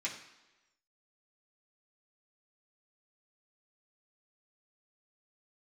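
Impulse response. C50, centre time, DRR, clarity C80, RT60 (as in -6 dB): 8.0 dB, 24 ms, -6.0 dB, 10.5 dB, 1.1 s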